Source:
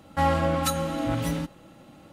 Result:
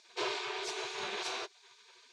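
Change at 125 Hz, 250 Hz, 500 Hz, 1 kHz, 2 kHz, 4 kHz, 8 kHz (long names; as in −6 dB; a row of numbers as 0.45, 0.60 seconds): −37.0, −21.0, −12.0, −13.5, −3.5, −0.5, −8.5 decibels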